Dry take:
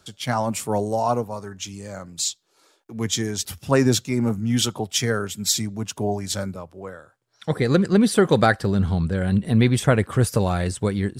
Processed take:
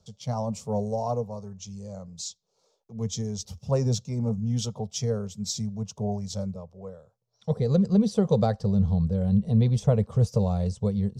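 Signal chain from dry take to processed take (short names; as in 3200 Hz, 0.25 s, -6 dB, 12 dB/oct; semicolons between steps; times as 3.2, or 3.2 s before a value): EQ curve 210 Hz 0 dB, 310 Hz -22 dB, 460 Hz -1 dB, 1100 Hz -11 dB, 1600 Hz -25 dB, 6000 Hz -5 dB, 10000 Hz -23 dB; gain -1.5 dB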